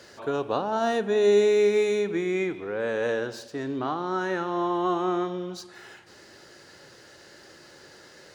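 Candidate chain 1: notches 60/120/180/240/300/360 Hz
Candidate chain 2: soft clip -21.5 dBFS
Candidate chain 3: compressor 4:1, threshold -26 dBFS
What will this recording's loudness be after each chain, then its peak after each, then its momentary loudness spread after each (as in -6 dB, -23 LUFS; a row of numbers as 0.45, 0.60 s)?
-26.0, -29.0, -30.5 LUFS; -11.0, -21.5, -18.0 dBFS; 14, 11, 21 LU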